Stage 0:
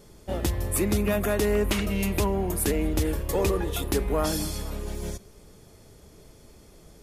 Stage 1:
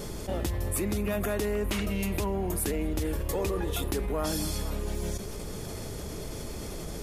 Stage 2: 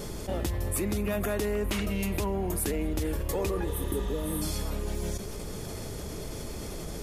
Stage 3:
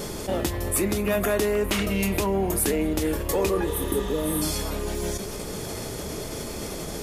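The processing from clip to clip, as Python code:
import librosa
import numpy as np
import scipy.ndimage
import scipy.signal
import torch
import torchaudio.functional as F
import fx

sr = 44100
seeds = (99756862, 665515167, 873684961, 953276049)

y1 = fx.env_flatten(x, sr, amount_pct=70)
y1 = y1 * librosa.db_to_amplitude(-7.0)
y2 = fx.spec_repair(y1, sr, seeds[0], start_s=3.74, length_s=0.66, low_hz=620.0, high_hz=8000.0, source='before')
y3 = fx.low_shelf(y2, sr, hz=120.0, db=-9.5)
y3 = fx.doubler(y3, sr, ms=26.0, db=-12.5)
y3 = y3 * librosa.db_to_amplitude(7.0)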